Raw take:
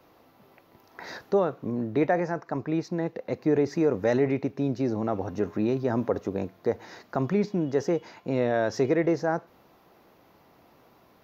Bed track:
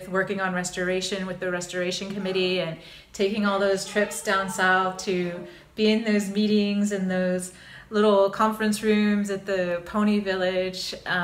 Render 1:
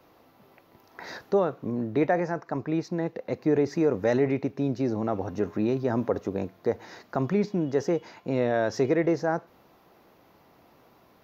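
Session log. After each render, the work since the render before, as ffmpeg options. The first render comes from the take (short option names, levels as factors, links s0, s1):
-af anull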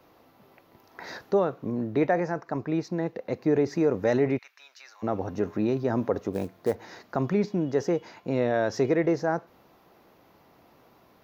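-filter_complex "[0:a]asplit=3[s0][s1][s2];[s0]afade=t=out:st=4.37:d=0.02[s3];[s1]highpass=f=1300:w=0.5412,highpass=f=1300:w=1.3066,afade=t=in:st=4.37:d=0.02,afade=t=out:st=5.02:d=0.02[s4];[s2]afade=t=in:st=5.02:d=0.02[s5];[s3][s4][s5]amix=inputs=3:normalize=0,asettb=1/sr,asplit=3[s6][s7][s8];[s6]atrim=end=6.334[s9];[s7]atrim=start=6.33:end=6.75,asetpts=PTS-STARTPTS,afade=t=in:d=0.004:c=qsin,afade=t=out:st=0.416:d=0.004:c=qsin,acrusher=bits=6:mode=log:mix=0:aa=0.000001[s10];[s8]atrim=start=6.746[s11];[s9][s10]acrossfade=d=0.004:c1=hsin:c2=qsin[s12];[s12][s11]acrossfade=d=0.004:c1=qsin:c2=hsin"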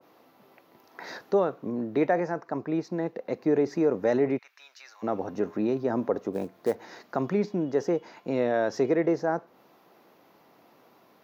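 -af "highpass=180,adynamicequalizer=threshold=0.00708:dfrequency=1600:dqfactor=0.7:tfrequency=1600:tqfactor=0.7:attack=5:release=100:ratio=0.375:range=2.5:mode=cutabove:tftype=highshelf"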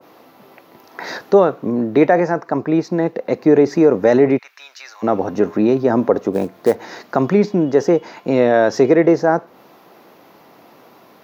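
-af "volume=3.98,alimiter=limit=0.794:level=0:latency=1"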